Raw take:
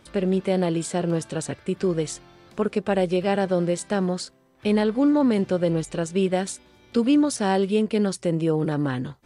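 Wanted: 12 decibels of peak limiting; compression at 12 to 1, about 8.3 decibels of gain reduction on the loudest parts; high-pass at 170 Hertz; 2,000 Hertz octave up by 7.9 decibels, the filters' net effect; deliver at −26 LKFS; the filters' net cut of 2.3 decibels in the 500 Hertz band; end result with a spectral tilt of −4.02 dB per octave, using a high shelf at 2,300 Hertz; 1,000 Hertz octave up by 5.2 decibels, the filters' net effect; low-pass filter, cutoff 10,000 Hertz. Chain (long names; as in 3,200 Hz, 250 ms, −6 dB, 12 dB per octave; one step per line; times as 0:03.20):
high-pass filter 170 Hz
low-pass filter 10,000 Hz
parametric band 500 Hz −5 dB
parametric band 1,000 Hz +7 dB
parametric band 2,000 Hz +4 dB
high-shelf EQ 2,300 Hz +8 dB
downward compressor 12 to 1, threshold −24 dBFS
level +8 dB
brickwall limiter −16 dBFS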